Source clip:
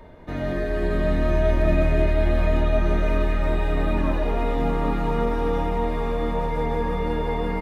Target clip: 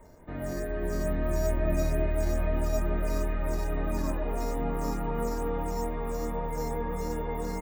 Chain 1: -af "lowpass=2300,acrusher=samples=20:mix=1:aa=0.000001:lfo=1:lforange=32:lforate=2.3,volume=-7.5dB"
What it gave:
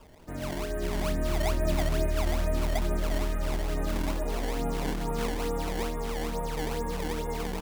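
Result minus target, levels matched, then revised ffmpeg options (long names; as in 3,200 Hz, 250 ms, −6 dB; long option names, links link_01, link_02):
sample-and-hold swept by an LFO: distortion +13 dB
-af "lowpass=2300,acrusher=samples=4:mix=1:aa=0.000001:lfo=1:lforange=6.4:lforate=2.3,volume=-7.5dB"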